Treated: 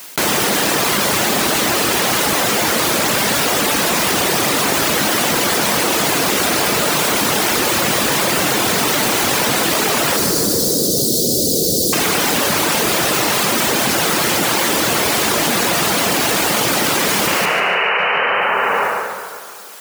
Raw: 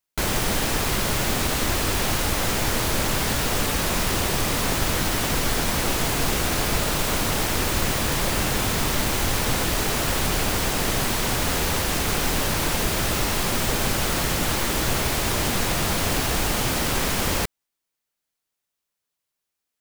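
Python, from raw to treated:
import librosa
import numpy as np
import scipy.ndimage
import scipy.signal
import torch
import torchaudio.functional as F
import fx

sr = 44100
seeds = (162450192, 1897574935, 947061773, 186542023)

y = scipy.signal.sosfilt(scipy.signal.butter(2, 210.0, 'highpass', fs=sr, output='sos'), x)
y = fx.dereverb_blind(y, sr, rt60_s=1.0)
y = fx.ellip_bandstop(y, sr, low_hz=510.0, high_hz=4400.0, order=3, stop_db=40, at=(10.16, 11.93))
y = fx.spec_paint(y, sr, seeds[0], shape='noise', start_s=17.27, length_s=0.71, low_hz=380.0, high_hz=3000.0, level_db=-29.0)
y = fx.echo_tape(y, sr, ms=144, feedback_pct=52, wet_db=-9.0, lp_hz=5300.0, drive_db=8.0, wow_cents=25)
y = fx.rev_plate(y, sr, seeds[1], rt60_s=2.0, hf_ratio=0.45, predelay_ms=0, drr_db=10.5)
y = fx.env_flatten(y, sr, amount_pct=100)
y = y * librosa.db_to_amplitude(8.0)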